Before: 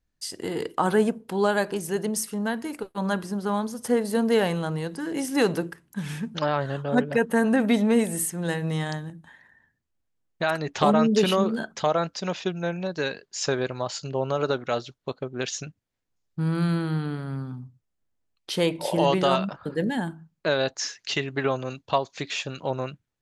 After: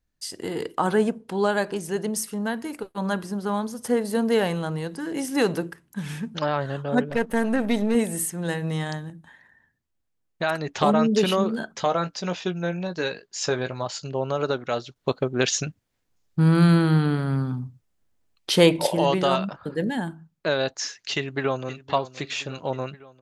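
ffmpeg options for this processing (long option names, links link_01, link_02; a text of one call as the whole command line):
ffmpeg -i in.wav -filter_complex "[0:a]asettb=1/sr,asplit=3[link_01][link_02][link_03];[link_01]atrim=end=0.874[link_04];[link_02]atrim=start=0.87:end=2.06,asetpts=PTS-STARTPTS,afade=type=in:duration=0.004:curve=qsin,afade=type=out:start_time=1.186:duration=0.004:curve=qsin,lowpass=9800[link_05];[link_03]atrim=start=2.056[link_06];[link_04][link_05]acrossfade=duration=0.004:curve1=hsin:curve2=qsin[link_07];[link_07][link_06]acrossfade=duration=0.004:curve1=qsin:curve2=hsin,asettb=1/sr,asplit=3[link_08][link_09][link_10];[link_08]atrim=end=7.104[link_11];[link_09]atrim=start=7.1:end=7.95,asetpts=PTS-STARTPTS,afade=type=in:duration=0.004:curve=qsin,afade=type=out:start_time=0.846:duration=0.004:curve=qsin,aeval=exprs='if(lt(val(0),0),0.447*val(0),val(0))':channel_layout=same[link_12];[link_10]atrim=start=7.946[link_13];[link_11][link_12]acrossfade=duration=0.004:curve1=hsin:curve2=qsin[link_14];[link_14][link_13]acrossfade=duration=0.004:curve1=qsin:curve2=hsin,asettb=1/sr,asplit=3[link_15][link_16][link_17];[link_15]atrim=end=11.754[link_18];[link_16]atrim=start=11.75:end=13.86,asetpts=PTS-STARTPTS,afade=type=in:duration=0.004:curve=qsin,afade=type=out:start_time=2.106:duration=0.004:curve=qsin,asplit=2[link_19][link_20];[link_20]adelay=17,volume=-9dB[link_21];[link_19][link_21]amix=inputs=2:normalize=0,atrim=end_sample=93051[link_22];[link_17]atrim=start=13.856[link_23];[link_18][link_22]acrossfade=duration=0.004:curve1=hsin:curve2=qsin[link_24];[link_24][link_23]acrossfade=duration=0.004:curve1=qsin:curve2=hsin,asplit=2[link_25][link_26];[link_26]afade=type=in:start_time=21.16:duration=0.01,afade=type=out:start_time=21.8:duration=0.01,aecho=0:1:520|1040|1560|2080|2600|3120|3640:0.16788|0.109122|0.0709295|0.0461042|0.0299677|0.019479|0.0126614[link_27];[link_25][link_27]amix=inputs=2:normalize=0,asplit=3[link_28][link_29][link_30];[link_28]atrim=end=14.962[link_31];[link_29]atrim=start=14.958:end=18.872,asetpts=PTS-STARTPTS,volume=7.5dB[link_32];[link_30]atrim=start=18.868[link_33];[link_31][link_32]acrossfade=duration=0.004:curve1=hsin:curve2=hsin[link_34];[link_34][link_33]acrossfade=duration=0.004:curve1=hsin:curve2=hsin" out.wav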